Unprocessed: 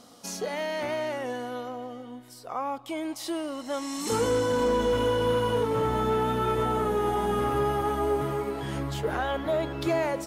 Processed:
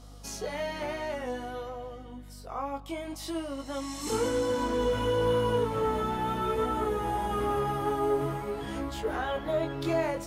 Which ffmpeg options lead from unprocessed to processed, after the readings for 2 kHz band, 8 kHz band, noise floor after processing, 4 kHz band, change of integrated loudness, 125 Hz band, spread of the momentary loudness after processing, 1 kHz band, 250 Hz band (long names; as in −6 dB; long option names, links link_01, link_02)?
−3.0 dB, −3.0 dB, −46 dBFS, −3.0 dB, −3.0 dB, −3.0 dB, 11 LU, −2.5 dB, −2.5 dB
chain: -af "aeval=exprs='val(0)+0.00501*(sin(2*PI*50*n/s)+sin(2*PI*2*50*n/s)/2+sin(2*PI*3*50*n/s)/3+sin(2*PI*4*50*n/s)/4+sin(2*PI*5*50*n/s)/5)':channel_layout=same,flanger=delay=18:depth=3.8:speed=0.56"